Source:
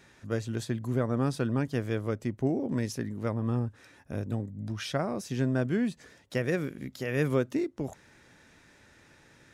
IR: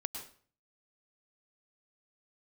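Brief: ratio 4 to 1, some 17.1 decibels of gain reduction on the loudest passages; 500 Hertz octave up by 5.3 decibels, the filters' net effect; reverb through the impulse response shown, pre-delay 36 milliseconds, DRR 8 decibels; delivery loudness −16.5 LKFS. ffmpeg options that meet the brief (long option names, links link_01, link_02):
-filter_complex "[0:a]equalizer=frequency=500:width_type=o:gain=6.5,acompressor=threshold=-40dB:ratio=4,asplit=2[link_01][link_02];[1:a]atrim=start_sample=2205,adelay=36[link_03];[link_02][link_03]afir=irnorm=-1:irlink=0,volume=-8dB[link_04];[link_01][link_04]amix=inputs=2:normalize=0,volume=25.5dB"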